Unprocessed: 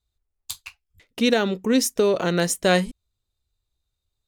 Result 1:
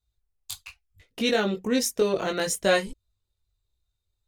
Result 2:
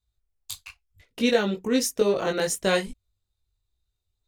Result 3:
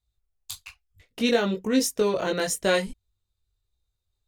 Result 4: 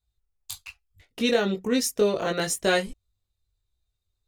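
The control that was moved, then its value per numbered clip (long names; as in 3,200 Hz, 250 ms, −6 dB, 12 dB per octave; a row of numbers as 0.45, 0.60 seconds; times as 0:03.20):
multi-voice chorus, speed: 0.63, 1.9, 1, 0.32 Hertz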